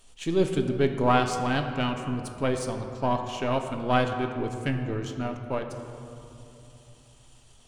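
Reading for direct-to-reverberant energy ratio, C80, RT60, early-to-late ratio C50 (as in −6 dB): 4.5 dB, 7.5 dB, 3.0 s, 6.5 dB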